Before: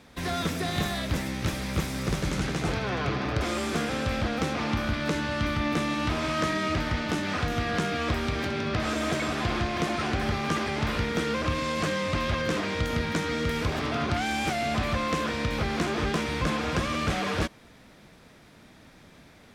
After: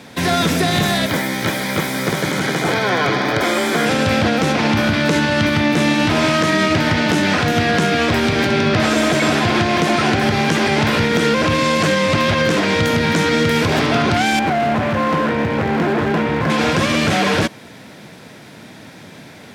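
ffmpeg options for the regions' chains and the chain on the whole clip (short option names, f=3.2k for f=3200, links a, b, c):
-filter_complex "[0:a]asettb=1/sr,asplit=3[a][b][c];[a]atrim=end=1.064[d];[b]atrim=start=1.06:end=3.86,asetpts=PTS-STARTPTS,afade=t=in:d=0.004:c=qsin,afade=t=out:st=2.796:d=0.004:c=qsin,aemphasis=mode=production:type=bsi,acrossover=split=3200[e][f];[f]acompressor=threshold=-46dB:ratio=4:attack=1:release=60[g];[e][g]amix=inputs=2:normalize=0,asuperstop=centerf=2700:order=4:qfactor=7.7[h];[c]atrim=start=3.856[i];[d][h]acrossfade=d=0.004:c1=hsin:c2=qsin[j];[j][i]acrossfade=d=0.004:c1=qsin:c2=hsin,asettb=1/sr,asplit=3[k][l][m];[k]atrim=end=14.394[n];[l]atrim=start=14.39:end=16.5,asetpts=PTS-STARTPTS,afade=t=in:d=0.004:c=qsin,afade=t=out:st=2.106:d=0.004:c=qsin,lowpass=1.7k,volume=28dB,asoftclip=hard,volume=-28dB[o];[m]atrim=start=16.496[p];[n][o]acrossfade=d=0.004:c1=hsin:c2=qsin[q];[q][p]acrossfade=d=0.004:c1=qsin:c2=hsin,highpass=f=99:w=0.5412,highpass=f=99:w=1.3066,bandreject=f=1.2k:w=9.9,alimiter=level_in=20dB:limit=-1dB:release=50:level=0:latency=1,volume=-5.5dB"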